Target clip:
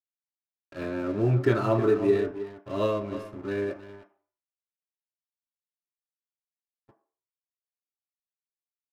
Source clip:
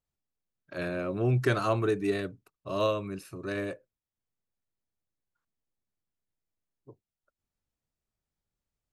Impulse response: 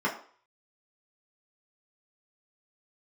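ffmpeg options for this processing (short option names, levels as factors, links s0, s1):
-filter_complex "[0:a]lowpass=f=3200:p=1,asplit=2[s0][s1];[s1]adelay=314.9,volume=0.282,highshelf=f=4000:g=-7.08[s2];[s0][s2]amix=inputs=2:normalize=0,adynamicequalizer=threshold=0.0126:dfrequency=350:dqfactor=1.8:tfrequency=350:tqfactor=1.8:attack=5:release=100:ratio=0.375:range=2:mode=boostabove:tftype=bell,aeval=exprs='sgn(val(0))*max(abs(val(0))-0.00562,0)':c=same,asplit=2[s3][s4];[1:a]atrim=start_sample=2205[s5];[s4][s5]afir=irnorm=-1:irlink=0,volume=0.224[s6];[s3][s6]amix=inputs=2:normalize=0"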